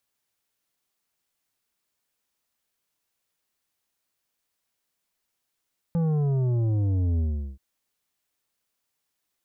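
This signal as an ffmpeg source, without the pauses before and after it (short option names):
-f lavfi -i "aevalsrc='0.0794*clip((1.63-t)/0.39,0,1)*tanh(2.82*sin(2*PI*170*1.63/log(65/170)*(exp(log(65/170)*t/1.63)-1)))/tanh(2.82)':d=1.63:s=44100"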